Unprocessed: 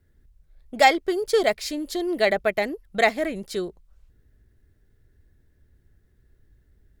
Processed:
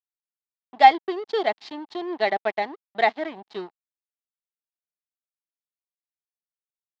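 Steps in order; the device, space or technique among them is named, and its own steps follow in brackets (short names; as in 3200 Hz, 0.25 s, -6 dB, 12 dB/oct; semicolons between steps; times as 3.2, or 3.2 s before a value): blown loudspeaker (crossover distortion -34.5 dBFS; speaker cabinet 240–4100 Hz, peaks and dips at 520 Hz -10 dB, 820 Hz +8 dB, 1400 Hz -5 dB, 2400 Hz -5 dB)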